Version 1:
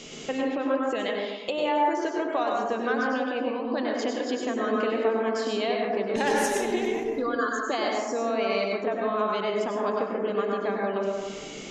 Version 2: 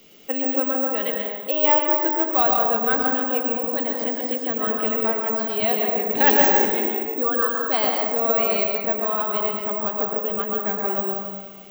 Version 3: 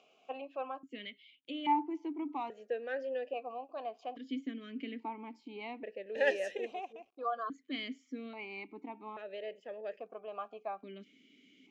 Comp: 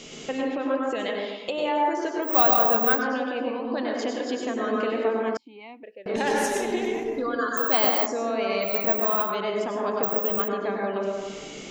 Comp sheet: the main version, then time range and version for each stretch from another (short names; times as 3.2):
1
2.27–2.97 from 2, crossfade 0.10 s
5.37–6.06 from 3
7.57–8.06 from 2
8.69–9.27 from 2, crossfade 0.16 s
10.03–10.48 from 2